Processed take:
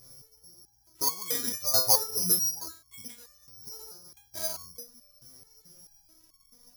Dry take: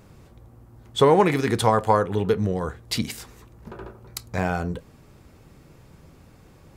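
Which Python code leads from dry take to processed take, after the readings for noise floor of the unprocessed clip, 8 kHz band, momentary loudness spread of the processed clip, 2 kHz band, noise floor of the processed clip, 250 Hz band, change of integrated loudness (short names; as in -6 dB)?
-52 dBFS, +10.5 dB, 22 LU, -16.5 dB, -65 dBFS, -19.5 dB, -3.0 dB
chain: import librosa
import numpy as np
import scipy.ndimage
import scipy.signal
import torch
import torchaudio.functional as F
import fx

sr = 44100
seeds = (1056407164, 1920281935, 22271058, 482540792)

y = fx.high_shelf(x, sr, hz=4200.0, db=-6.0)
y = (np.kron(scipy.signal.resample_poly(y, 1, 8), np.eye(8)[0]) * 8)[:len(y)]
y = fx.resonator_held(y, sr, hz=4.6, low_hz=130.0, high_hz=1100.0)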